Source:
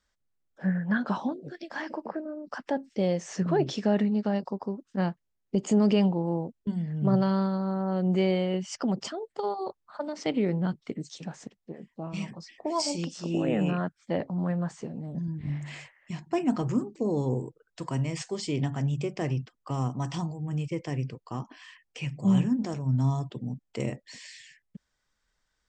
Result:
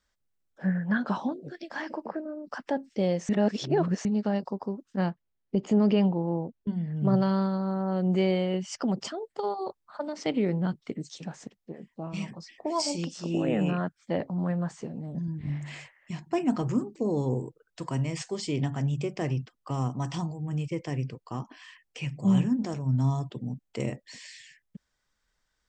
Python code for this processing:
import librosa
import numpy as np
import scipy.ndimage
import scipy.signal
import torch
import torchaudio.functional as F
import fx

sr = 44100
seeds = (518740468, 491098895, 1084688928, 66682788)

y = fx.air_absorb(x, sr, metres=150.0, at=(5.1, 6.96))
y = fx.edit(y, sr, fx.reverse_span(start_s=3.29, length_s=0.76), tone=tone)